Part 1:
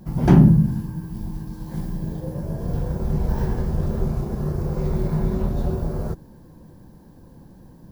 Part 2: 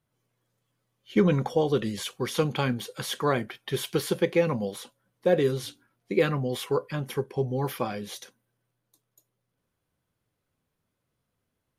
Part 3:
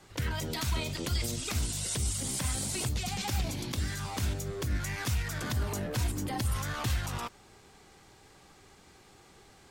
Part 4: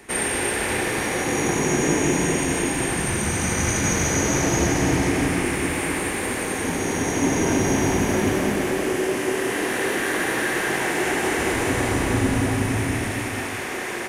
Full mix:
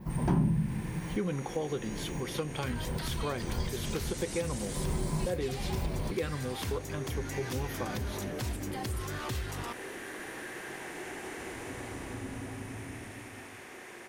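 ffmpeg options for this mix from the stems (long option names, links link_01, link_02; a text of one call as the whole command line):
ffmpeg -i stem1.wav -i stem2.wav -i stem3.wav -i stem4.wav -filter_complex "[0:a]equalizer=frequency=1000:width=5.5:gain=10,volume=-2.5dB[link_01];[1:a]volume=-4dB,asplit=2[link_02][link_03];[2:a]adelay=2450,volume=-1.5dB[link_04];[3:a]volume=-18.5dB[link_05];[link_03]apad=whole_len=349153[link_06];[link_01][link_06]sidechaincompress=threshold=-43dB:ratio=10:attack=6.6:release=131[link_07];[link_07][link_02][link_04][link_05]amix=inputs=4:normalize=0,adynamicequalizer=threshold=0.00316:dfrequency=7300:dqfactor=2.2:tfrequency=7300:tqfactor=2.2:attack=5:release=100:ratio=0.375:range=2:mode=cutabove:tftype=bell,acompressor=threshold=-34dB:ratio=2" out.wav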